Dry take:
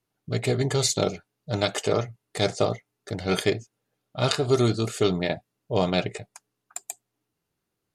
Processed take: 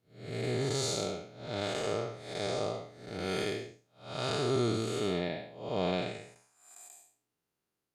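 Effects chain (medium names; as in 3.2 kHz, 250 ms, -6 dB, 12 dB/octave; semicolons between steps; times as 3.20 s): spectral blur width 246 ms; bass shelf 160 Hz -8 dB; trim -2.5 dB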